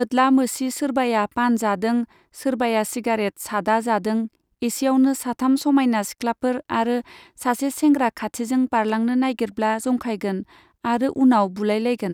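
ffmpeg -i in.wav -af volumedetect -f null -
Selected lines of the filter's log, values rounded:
mean_volume: -21.2 dB
max_volume: -6.4 dB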